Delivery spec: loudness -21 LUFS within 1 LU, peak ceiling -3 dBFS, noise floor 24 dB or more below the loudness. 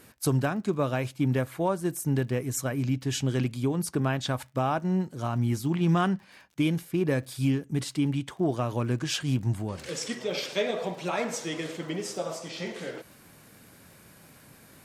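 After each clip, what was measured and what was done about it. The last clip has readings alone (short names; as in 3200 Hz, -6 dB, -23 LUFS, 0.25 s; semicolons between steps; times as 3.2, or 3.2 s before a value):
ticks 39/s; loudness -29.0 LUFS; peak -15.0 dBFS; loudness target -21.0 LUFS
-> de-click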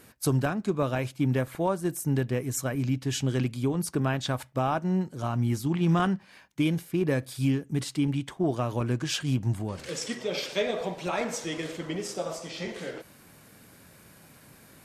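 ticks 0.13/s; loudness -29.0 LUFS; peak -15.0 dBFS; loudness target -21.0 LUFS
-> gain +8 dB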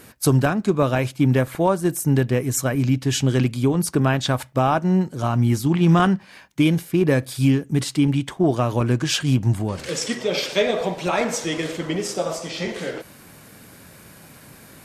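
loudness -21.0 LUFS; peak -7.0 dBFS; noise floor -47 dBFS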